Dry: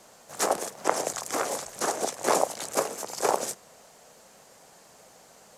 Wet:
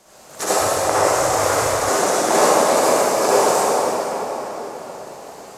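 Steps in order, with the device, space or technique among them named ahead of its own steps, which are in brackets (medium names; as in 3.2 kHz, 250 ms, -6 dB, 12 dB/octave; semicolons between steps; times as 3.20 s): cathedral (reverberation RT60 4.8 s, pre-delay 52 ms, DRR -12 dB); 0.60–1.89 s: resonant low shelf 140 Hz +10.5 dB, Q 3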